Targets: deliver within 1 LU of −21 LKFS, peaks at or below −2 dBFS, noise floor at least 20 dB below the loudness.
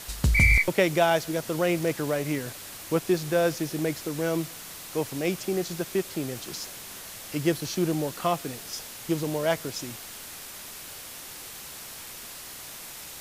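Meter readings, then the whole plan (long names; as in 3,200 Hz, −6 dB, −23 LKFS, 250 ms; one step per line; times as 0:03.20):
background noise floor −42 dBFS; target noise floor −47 dBFS; integrated loudness −27.0 LKFS; sample peak −8.5 dBFS; target loudness −21.0 LKFS
→ broadband denoise 6 dB, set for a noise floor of −42 dBFS
level +6 dB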